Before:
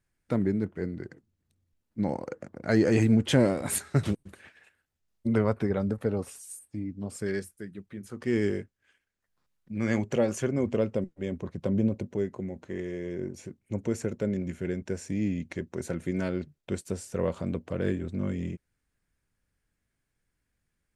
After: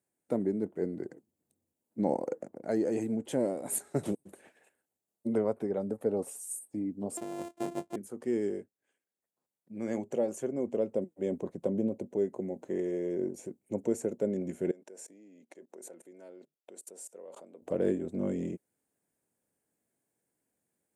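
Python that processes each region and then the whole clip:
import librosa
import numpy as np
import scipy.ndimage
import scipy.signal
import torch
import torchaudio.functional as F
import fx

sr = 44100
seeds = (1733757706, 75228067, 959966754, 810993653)

y = fx.chain(x, sr, fx.sample_sort(block=128),
    fx.over_compress(threshold_db=-37.0, ratio=-1.0),
    fx.air_absorb(metres=53.0), at=(7.17, 7.96))
y = fx.chain(y, sr, fx.level_steps(step_db=24),
    fx.highpass(hz=380.0, slope=12), at=(14.71, 17.62))
y = scipy.signal.sosfilt(scipy.signal.butter(2, 280.0, 'highpass', fs=sr, output='sos'), y)
y = fx.band_shelf(y, sr, hz=2500.0, db=-12.5, octaves=2.7)
y = fx.rider(y, sr, range_db=5, speed_s=0.5)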